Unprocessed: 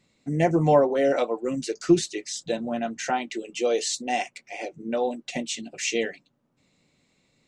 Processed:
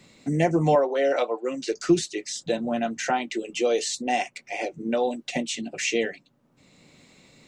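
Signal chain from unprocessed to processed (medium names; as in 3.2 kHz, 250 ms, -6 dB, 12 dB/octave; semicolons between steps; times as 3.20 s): 0.75–1.68 s: band-pass 390–5300 Hz; three bands compressed up and down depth 40%; trim +1 dB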